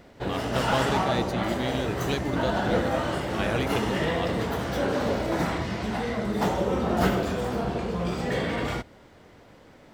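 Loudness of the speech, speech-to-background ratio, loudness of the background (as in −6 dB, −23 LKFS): −32.5 LKFS, −5.0 dB, −27.5 LKFS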